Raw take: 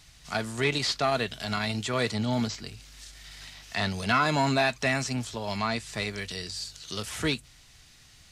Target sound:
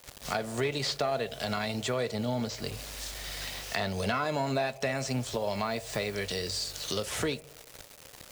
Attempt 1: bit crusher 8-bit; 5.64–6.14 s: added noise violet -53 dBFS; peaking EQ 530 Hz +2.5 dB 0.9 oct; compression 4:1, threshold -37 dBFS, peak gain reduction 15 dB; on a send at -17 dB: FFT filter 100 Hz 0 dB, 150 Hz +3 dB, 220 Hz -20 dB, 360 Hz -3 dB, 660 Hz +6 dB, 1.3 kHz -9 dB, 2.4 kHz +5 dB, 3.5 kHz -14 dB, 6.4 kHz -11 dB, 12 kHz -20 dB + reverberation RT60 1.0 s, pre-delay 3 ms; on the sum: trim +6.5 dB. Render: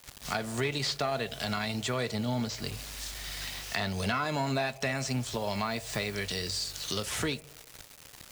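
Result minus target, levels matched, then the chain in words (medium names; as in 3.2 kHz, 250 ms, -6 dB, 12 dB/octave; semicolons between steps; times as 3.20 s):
500 Hz band -3.0 dB
bit crusher 8-bit; 5.64–6.14 s: added noise violet -53 dBFS; peaking EQ 530 Hz +9.5 dB 0.9 oct; compression 4:1, threshold -37 dBFS, peak gain reduction 17 dB; on a send at -17 dB: FFT filter 100 Hz 0 dB, 150 Hz +3 dB, 220 Hz -20 dB, 360 Hz -3 dB, 660 Hz +6 dB, 1.3 kHz -9 dB, 2.4 kHz +5 dB, 3.5 kHz -14 dB, 6.4 kHz -11 dB, 12 kHz -20 dB + reverberation RT60 1.0 s, pre-delay 3 ms; on the sum: trim +6.5 dB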